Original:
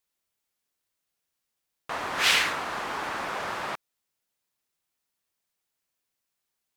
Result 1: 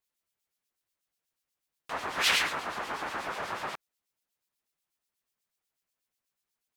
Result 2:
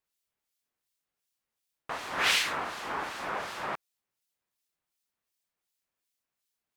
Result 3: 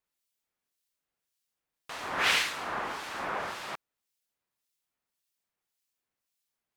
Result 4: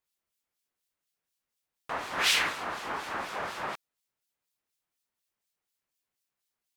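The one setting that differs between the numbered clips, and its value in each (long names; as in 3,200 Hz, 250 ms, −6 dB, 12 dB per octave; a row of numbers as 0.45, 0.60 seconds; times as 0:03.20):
two-band tremolo in antiphase, speed: 8.2, 2.7, 1.8, 4.1 Hertz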